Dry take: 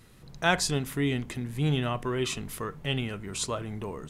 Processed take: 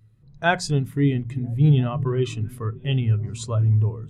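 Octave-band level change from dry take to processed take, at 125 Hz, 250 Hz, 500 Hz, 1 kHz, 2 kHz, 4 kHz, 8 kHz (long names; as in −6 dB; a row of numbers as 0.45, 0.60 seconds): +12.5 dB, +6.5 dB, +4.0 dB, +3.5 dB, +3.0 dB, −2.0 dB, can't be measured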